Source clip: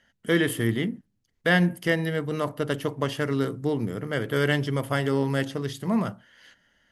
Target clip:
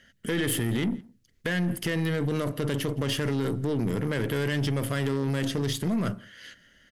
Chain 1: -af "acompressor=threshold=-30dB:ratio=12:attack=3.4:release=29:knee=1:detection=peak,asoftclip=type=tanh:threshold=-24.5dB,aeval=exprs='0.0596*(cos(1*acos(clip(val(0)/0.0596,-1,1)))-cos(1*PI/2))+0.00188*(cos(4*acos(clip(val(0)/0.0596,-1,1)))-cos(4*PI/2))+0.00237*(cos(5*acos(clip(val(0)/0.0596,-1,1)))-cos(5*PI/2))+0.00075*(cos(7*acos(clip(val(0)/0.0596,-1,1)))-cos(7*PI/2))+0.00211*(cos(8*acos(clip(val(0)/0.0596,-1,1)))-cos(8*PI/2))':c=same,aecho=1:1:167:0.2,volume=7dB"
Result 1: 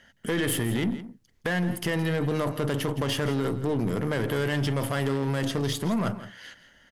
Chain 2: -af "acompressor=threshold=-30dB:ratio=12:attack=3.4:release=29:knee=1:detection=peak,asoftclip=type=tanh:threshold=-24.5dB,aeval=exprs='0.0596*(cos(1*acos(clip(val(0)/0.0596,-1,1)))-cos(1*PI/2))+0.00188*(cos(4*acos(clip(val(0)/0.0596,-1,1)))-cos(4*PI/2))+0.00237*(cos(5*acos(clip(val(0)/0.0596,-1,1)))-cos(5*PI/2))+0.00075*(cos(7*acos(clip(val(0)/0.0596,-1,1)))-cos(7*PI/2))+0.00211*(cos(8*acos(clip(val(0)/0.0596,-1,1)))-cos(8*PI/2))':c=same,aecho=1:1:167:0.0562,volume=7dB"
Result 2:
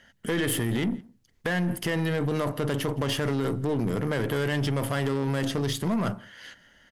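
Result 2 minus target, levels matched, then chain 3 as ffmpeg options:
1000 Hz band +4.0 dB
-af "acompressor=threshold=-30dB:ratio=12:attack=3.4:release=29:knee=1:detection=peak,equalizer=f=870:t=o:w=0.67:g=-13,asoftclip=type=tanh:threshold=-24.5dB,aeval=exprs='0.0596*(cos(1*acos(clip(val(0)/0.0596,-1,1)))-cos(1*PI/2))+0.00188*(cos(4*acos(clip(val(0)/0.0596,-1,1)))-cos(4*PI/2))+0.00237*(cos(5*acos(clip(val(0)/0.0596,-1,1)))-cos(5*PI/2))+0.00075*(cos(7*acos(clip(val(0)/0.0596,-1,1)))-cos(7*PI/2))+0.00211*(cos(8*acos(clip(val(0)/0.0596,-1,1)))-cos(8*PI/2))':c=same,aecho=1:1:167:0.0562,volume=7dB"

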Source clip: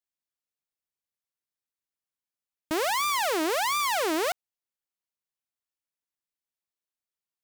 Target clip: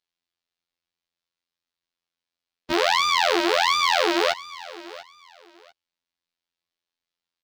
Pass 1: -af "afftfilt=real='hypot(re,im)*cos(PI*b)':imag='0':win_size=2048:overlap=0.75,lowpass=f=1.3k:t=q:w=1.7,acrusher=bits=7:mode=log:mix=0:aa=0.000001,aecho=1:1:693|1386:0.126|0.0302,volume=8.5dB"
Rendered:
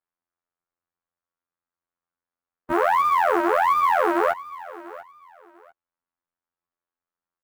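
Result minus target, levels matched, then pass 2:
4000 Hz band -19.5 dB
-af "afftfilt=real='hypot(re,im)*cos(PI*b)':imag='0':win_size=2048:overlap=0.75,lowpass=f=4.3k:t=q:w=1.7,acrusher=bits=7:mode=log:mix=0:aa=0.000001,aecho=1:1:693|1386:0.126|0.0302,volume=8.5dB"

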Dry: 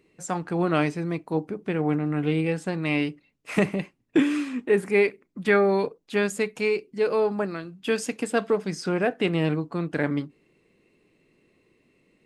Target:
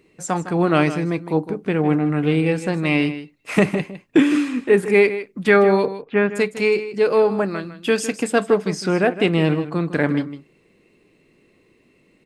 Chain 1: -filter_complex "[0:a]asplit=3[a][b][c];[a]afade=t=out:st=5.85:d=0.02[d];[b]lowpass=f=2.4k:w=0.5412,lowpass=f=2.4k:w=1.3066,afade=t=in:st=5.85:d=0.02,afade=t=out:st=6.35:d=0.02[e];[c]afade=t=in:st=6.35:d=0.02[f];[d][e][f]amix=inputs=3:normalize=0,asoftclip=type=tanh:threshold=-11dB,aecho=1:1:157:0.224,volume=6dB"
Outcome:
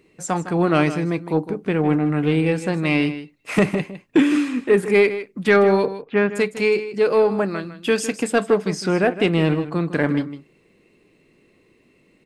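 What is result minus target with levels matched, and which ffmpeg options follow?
soft clip: distortion +20 dB
-filter_complex "[0:a]asplit=3[a][b][c];[a]afade=t=out:st=5.85:d=0.02[d];[b]lowpass=f=2.4k:w=0.5412,lowpass=f=2.4k:w=1.3066,afade=t=in:st=5.85:d=0.02,afade=t=out:st=6.35:d=0.02[e];[c]afade=t=in:st=6.35:d=0.02[f];[d][e][f]amix=inputs=3:normalize=0,asoftclip=type=tanh:threshold=0dB,aecho=1:1:157:0.224,volume=6dB"

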